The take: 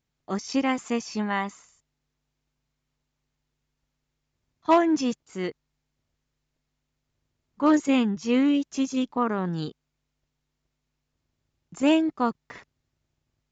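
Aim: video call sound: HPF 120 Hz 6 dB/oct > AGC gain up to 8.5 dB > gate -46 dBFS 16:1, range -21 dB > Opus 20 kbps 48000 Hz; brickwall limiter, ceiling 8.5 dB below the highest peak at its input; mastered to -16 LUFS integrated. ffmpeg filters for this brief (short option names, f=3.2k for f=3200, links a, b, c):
-af "alimiter=limit=-20.5dB:level=0:latency=1,highpass=f=120:p=1,dynaudnorm=m=8.5dB,agate=range=-21dB:threshold=-46dB:ratio=16,volume=15dB" -ar 48000 -c:a libopus -b:a 20k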